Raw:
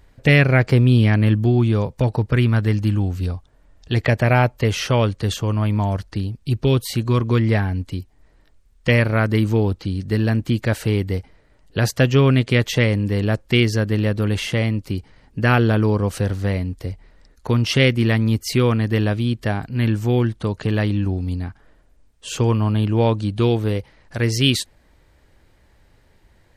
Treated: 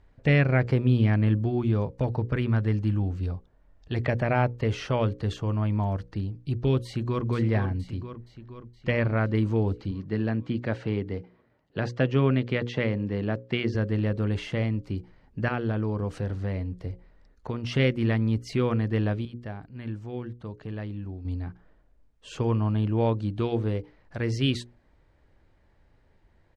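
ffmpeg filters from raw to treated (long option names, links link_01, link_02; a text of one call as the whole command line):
ffmpeg -i in.wav -filter_complex "[0:a]asplit=2[link_01][link_02];[link_02]afade=type=in:start_time=6.85:duration=0.01,afade=type=out:start_time=7.26:duration=0.01,aecho=0:1:470|940|1410|1880|2350|2820|3290|3760|4230:0.398107|0.25877|0.1682|0.10933|0.0710646|0.046192|0.0300248|0.0195161|0.0126855[link_03];[link_01][link_03]amix=inputs=2:normalize=0,asettb=1/sr,asplit=3[link_04][link_05][link_06];[link_04]atrim=end=7.984[link_07];[link_05]atrim=start=7.98:end=9.36,asetpts=PTS-STARTPTS,afade=type=in:duration=0.004:curve=qsin,afade=type=out:start_time=1.376:duration=0.004:curve=qsin,equalizer=frequency=9800:width_type=o:width=0.82:gain=-12[link_08];[link_06]atrim=start=9.356[link_09];[link_07][link_08]acrossfade=duration=0.004:curve1=hsin:curve2=qsin[link_10];[link_10][link_09]acrossfade=duration=0.004:curve1=qsin:curve2=hsin,asettb=1/sr,asplit=3[link_11][link_12][link_13];[link_11]atrim=end=9.914[link_14];[link_12]atrim=start=9.91:end=13.75,asetpts=PTS-STARTPTS,afade=type=in:duration=0.004:curve=qsin,afade=type=out:start_time=3.836:duration=0.004:curve=qsin,highpass=120,lowpass=4700[link_15];[link_13]atrim=start=13.746[link_16];[link_14][link_15]acrossfade=duration=0.004:curve1=hsin:curve2=qsin[link_17];[link_17][link_16]acrossfade=duration=0.004:curve1=qsin:curve2=hsin,asettb=1/sr,asplit=3[link_18][link_19][link_20];[link_18]atrim=end=15.484[link_21];[link_19]atrim=start=15.48:end=17.72,asetpts=PTS-STARTPTS,afade=type=in:duration=0.004:curve=qsin,afade=type=out:start_time=2.236:duration=0.004:curve=qsin,acompressor=threshold=-20dB:ratio=2:attack=3.2:release=140:knee=1:detection=peak[link_22];[link_20]atrim=start=17.716[link_23];[link_21][link_22]acrossfade=duration=0.004:curve1=hsin:curve2=qsin[link_24];[link_24][link_23]acrossfade=duration=0.004:curve1=qsin:curve2=hsin,asplit=3[link_25][link_26][link_27];[link_25]atrim=end=19.252[link_28];[link_26]atrim=start=19.248:end=21.252,asetpts=PTS-STARTPTS,volume=-8.5dB[link_29];[link_27]atrim=start=21.248[link_30];[link_28][link_29]acrossfade=duration=0.004:curve1=hsin:curve2=hsin[link_31];[link_31][link_30]acrossfade=duration=0.004:curve1=hsin:curve2=hsin,lowpass=7700,highshelf=frequency=2800:gain=-11,bandreject=frequency=60:width_type=h:width=6,bandreject=frequency=120:width_type=h:width=6,bandreject=frequency=180:width_type=h:width=6,bandreject=frequency=240:width_type=h:width=6,bandreject=frequency=300:width_type=h:width=6,bandreject=frequency=360:width_type=h:width=6,bandreject=frequency=420:width_type=h:width=6,bandreject=frequency=480:width_type=h:width=6,bandreject=frequency=540:width_type=h:width=6,volume=-6dB" out.wav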